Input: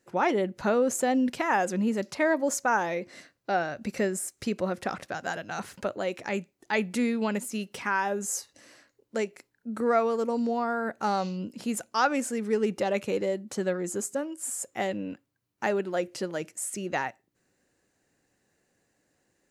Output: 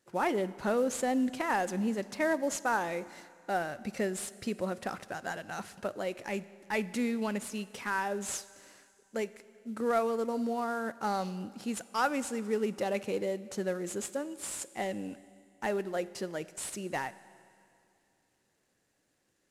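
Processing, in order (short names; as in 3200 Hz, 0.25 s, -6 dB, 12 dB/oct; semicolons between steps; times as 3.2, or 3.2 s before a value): CVSD 64 kbps; Schroeder reverb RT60 2.5 s, combs from 31 ms, DRR 17 dB; gain -4.5 dB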